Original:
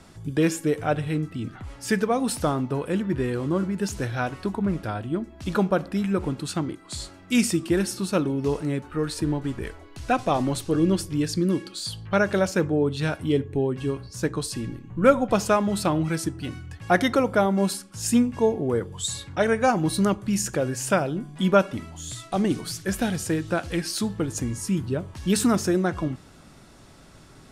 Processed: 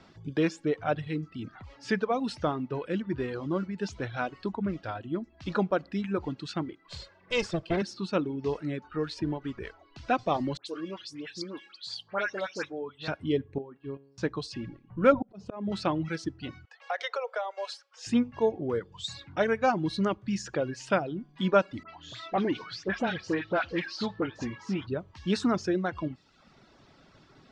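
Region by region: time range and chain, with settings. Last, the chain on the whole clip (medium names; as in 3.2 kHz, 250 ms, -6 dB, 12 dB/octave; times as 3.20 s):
6.88–7.82 s: comb filter that takes the minimum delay 1.9 ms + peaking EQ 93 Hz +3.5 dB 2.9 oct
10.57–13.08 s: high-pass 990 Hz 6 dB/octave + phase dispersion highs, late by 95 ms, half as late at 2.2 kHz
13.58–14.18 s: gate -33 dBFS, range -14 dB + boxcar filter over 7 samples + feedback comb 69 Hz, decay 0.97 s, mix 70%
15.12–15.72 s: hum notches 60/120/180/240 Hz + slow attack 393 ms + tilt shelf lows +7.5 dB, about 830 Hz
16.65–18.07 s: Chebyshev high-pass 460 Hz, order 6 + compression 4:1, threshold -24 dBFS
21.83–24.87 s: low-pass 6.1 kHz + phase dispersion highs, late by 60 ms, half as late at 1.6 kHz + overdrive pedal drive 15 dB, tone 1.9 kHz, clips at -13.5 dBFS
whole clip: reverb removal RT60 0.79 s; low-pass 5.2 kHz 24 dB/octave; bass shelf 95 Hz -10 dB; trim -3.5 dB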